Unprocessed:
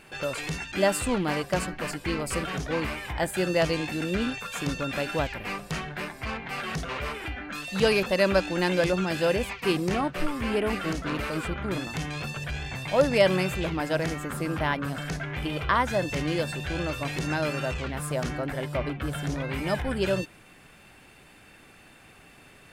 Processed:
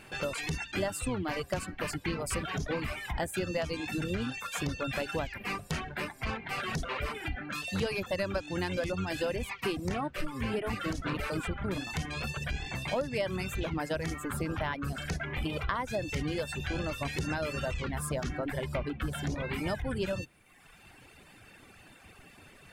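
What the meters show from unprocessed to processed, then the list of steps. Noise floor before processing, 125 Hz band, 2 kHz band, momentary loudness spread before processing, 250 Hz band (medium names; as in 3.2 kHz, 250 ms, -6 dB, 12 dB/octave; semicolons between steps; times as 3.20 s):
-53 dBFS, -4.0 dB, -5.5 dB, 9 LU, -6.0 dB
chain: octave divider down 1 oct, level -3 dB; reverb removal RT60 1 s; compression 6:1, threshold -29 dBFS, peak gain reduction 13.5 dB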